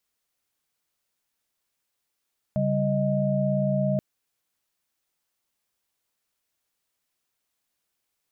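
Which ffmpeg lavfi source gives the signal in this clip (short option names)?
-f lavfi -i "aevalsrc='0.0531*(sin(2*PI*138.59*t)+sin(2*PI*196*t)+sin(2*PI*622.25*t))':d=1.43:s=44100"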